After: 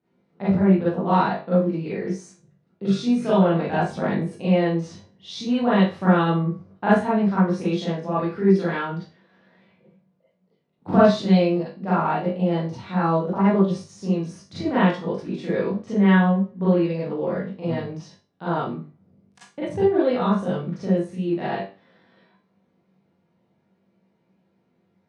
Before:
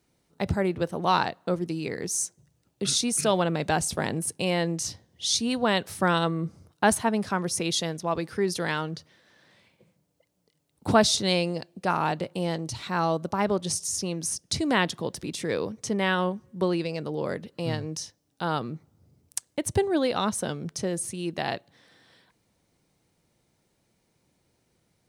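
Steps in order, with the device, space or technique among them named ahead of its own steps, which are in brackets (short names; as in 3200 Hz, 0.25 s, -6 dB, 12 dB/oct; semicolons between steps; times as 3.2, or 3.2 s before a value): HPF 110 Hz; phone in a pocket (LPF 3300 Hz 12 dB/oct; bell 180 Hz +5.5 dB 0.34 oct; high shelf 2100 Hz -11 dB); high shelf 11000 Hz -3 dB; flutter echo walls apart 3.5 m, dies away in 0.22 s; Schroeder reverb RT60 0.3 s, combs from 33 ms, DRR -9.5 dB; gain -6 dB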